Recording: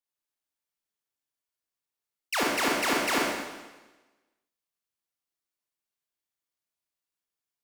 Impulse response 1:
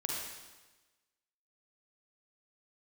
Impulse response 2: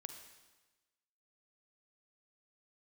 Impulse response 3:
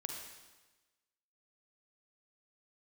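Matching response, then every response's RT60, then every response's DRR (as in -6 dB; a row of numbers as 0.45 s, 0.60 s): 1; 1.2 s, 1.2 s, 1.2 s; -2.5 dB, 6.5 dB, 1.5 dB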